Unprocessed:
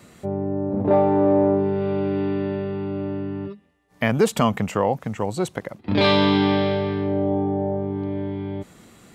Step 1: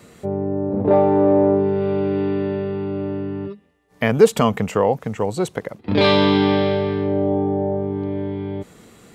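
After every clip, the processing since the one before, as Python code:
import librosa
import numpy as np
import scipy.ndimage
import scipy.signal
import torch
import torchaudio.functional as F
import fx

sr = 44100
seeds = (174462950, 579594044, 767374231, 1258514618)

y = fx.peak_eq(x, sr, hz=450.0, db=7.0, octaves=0.26)
y = F.gain(torch.from_numpy(y), 1.5).numpy()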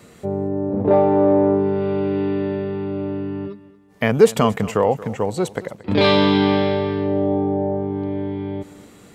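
y = fx.echo_feedback(x, sr, ms=228, feedback_pct=34, wet_db=-18.0)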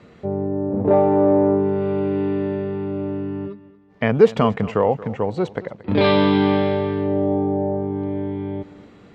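y = fx.air_absorb(x, sr, metres=210.0)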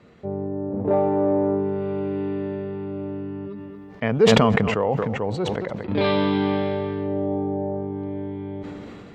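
y = fx.sustainer(x, sr, db_per_s=22.0)
y = F.gain(torch.from_numpy(y), -5.0).numpy()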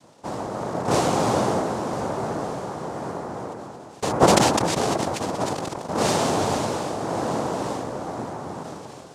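y = fx.noise_vocoder(x, sr, seeds[0], bands=2)
y = F.gain(torch.from_numpy(y), -1.0).numpy()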